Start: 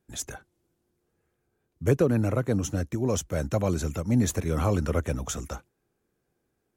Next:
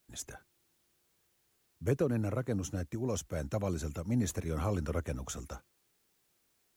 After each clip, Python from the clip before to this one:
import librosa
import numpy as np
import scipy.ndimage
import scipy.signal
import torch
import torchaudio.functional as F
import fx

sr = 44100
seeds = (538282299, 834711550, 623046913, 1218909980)

y = fx.dmg_noise_colour(x, sr, seeds[0], colour='white', level_db=-67.0)
y = y * librosa.db_to_amplitude(-8.0)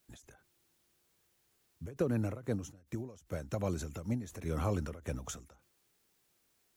y = fx.end_taper(x, sr, db_per_s=120.0)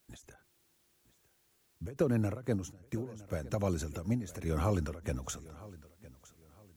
y = fx.echo_feedback(x, sr, ms=961, feedback_pct=31, wet_db=-19)
y = y * librosa.db_to_amplitude(2.5)